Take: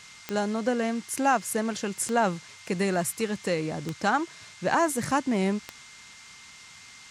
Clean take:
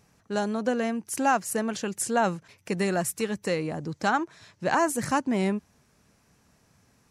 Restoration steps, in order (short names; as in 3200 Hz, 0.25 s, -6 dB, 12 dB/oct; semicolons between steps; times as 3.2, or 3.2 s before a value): de-click; notch 2100 Hz, Q 30; noise print and reduce 15 dB